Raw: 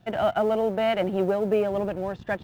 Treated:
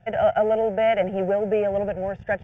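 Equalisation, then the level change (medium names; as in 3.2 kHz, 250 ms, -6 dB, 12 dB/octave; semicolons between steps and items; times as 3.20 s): distance through air 110 m; static phaser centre 1.1 kHz, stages 6; +5.0 dB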